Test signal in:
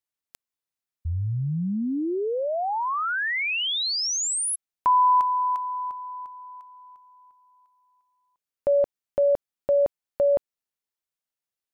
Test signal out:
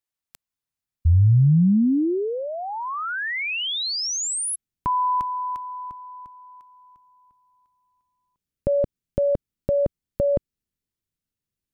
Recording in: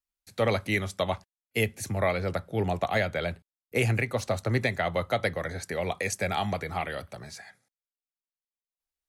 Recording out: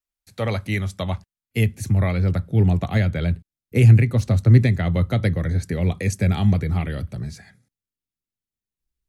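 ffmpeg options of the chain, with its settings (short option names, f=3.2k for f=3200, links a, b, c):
-af "asubboost=boost=9.5:cutoff=240"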